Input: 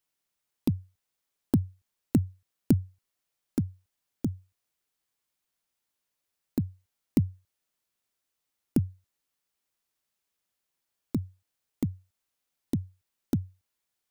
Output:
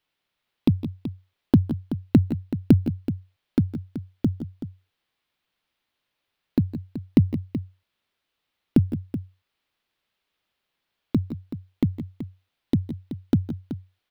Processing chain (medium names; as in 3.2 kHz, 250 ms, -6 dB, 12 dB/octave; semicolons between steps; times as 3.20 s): resonant high shelf 5 kHz -12 dB, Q 1.5; on a send: multi-tap echo 158/171/378 ms -16.5/-13/-12 dB; on the sum: trim +7 dB